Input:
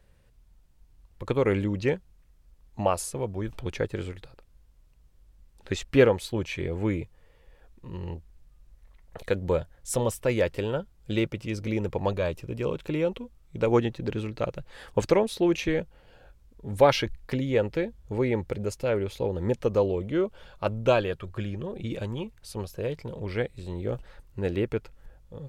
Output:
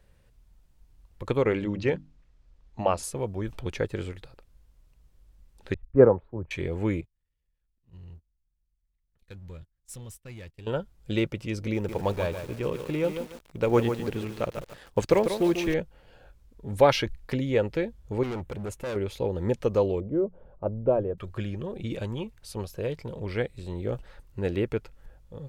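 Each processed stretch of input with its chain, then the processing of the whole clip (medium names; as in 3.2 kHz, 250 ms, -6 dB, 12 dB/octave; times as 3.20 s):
1.42–3.03 s: low-pass 5.7 kHz + hum notches 50/100/150/200/250/300 Hz
5.74–6.51 s: low-pass 1.2 kHz 24 dB/octave + three bands expanded up and down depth 100%
7.01–10.67 s: amplifier tone stack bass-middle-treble 6-0-2 + power-law waveshaper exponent 0.7 + gate -48 dBFS, range -20 dB
11.74–15.74 s: companding laws mixed up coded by A + bit-crushed delay 145 ms, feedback 35%, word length 7-bit, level -7.5 dB
18.23–18.96 s: peaking EQ 4.9 kHz -13 dB 0.53 oct + overload inside the chain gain 30 dB
20.00–21.18 s: Chebyshev low-pass 560 Hz + hum notches 60/120/180 Hz
whole clip: none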